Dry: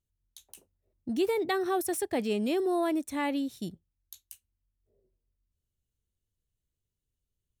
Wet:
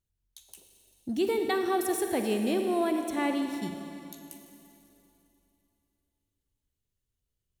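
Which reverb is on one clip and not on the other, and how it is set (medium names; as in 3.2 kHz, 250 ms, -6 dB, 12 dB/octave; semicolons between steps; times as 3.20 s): Schroeder reverb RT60 2.9 s, DRR 4.5 dB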